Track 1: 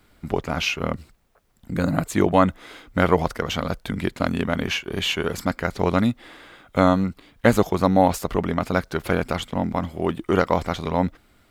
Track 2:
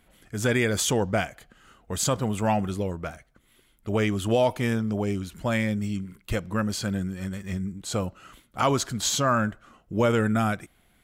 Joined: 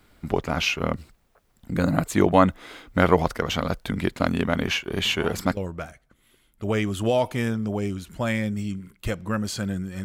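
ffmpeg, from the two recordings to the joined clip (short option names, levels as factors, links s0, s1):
-filter_complex "[1:a]asplit=2[s0][s1];[0:a]apad=whole_dur=10.04,atrim=end=10.04,atrim=end=5.572[s2];[s1]atrim=start=2.818:end=7.29[s3];[s0]atrim=start=2.3:end=2.82,asetpts=PTS-STARTPTS,volume=0.178,afade=t=in:d=0.004:c=hsin,afade=t=out:st=0.516:d=0.004:c=hsin,adelay=222705S[s4];[s2][s3]acrossfade=d=0.004:c1=hsin:c2=hsin[s5];[s5][s4]amix=inputs=2:normalize=0"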